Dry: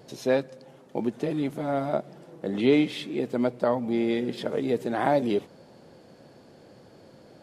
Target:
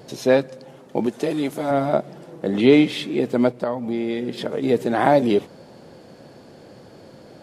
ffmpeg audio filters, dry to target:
-filter_complex "[0:a]asettb=1/sr,asplit=3[s0][s1][s2];[s0]atrim=end=1.064[s3];[s1]atrim=start=1.06:end=1.71,asetpts=PTS-STARTPTS,afade=t=in:d=0.004:c=qsin,afade=t=out:st=0.646:d=0.004:c=qsin,bass=f=250:g=-8,treble=f=4000:g=6[s4];[s2]atrim=start=1.706[s5];[s3][s4]acrossfade=d=0.004:c1=hsin:c2=qsin[s6];[s6][s5]acrossfade=d=0.004:c1=qsin:c2=hsin,asplit=3[s7][s8][s9];[s7]afade=t=out:st=3.51:d=0.02[s10];[s8]acompressor=threshold=0.0282:ratio=2.5,afade=t=in:st=3.51:d=0.02,afade=t=out:st=4.62:d=0.02[s11];[s9]afade=t=in:st=4.62:d=0.02[s12];[s10][s11][s12]amix=inputs=3:normalize=0,volume=2.24"

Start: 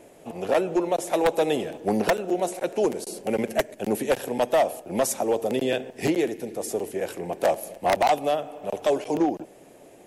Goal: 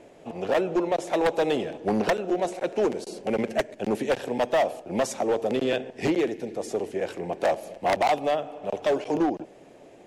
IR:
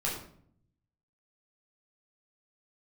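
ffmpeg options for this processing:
-af "lowpass=5600,volume=7.94,asoftclip=hard,volume=0.126"

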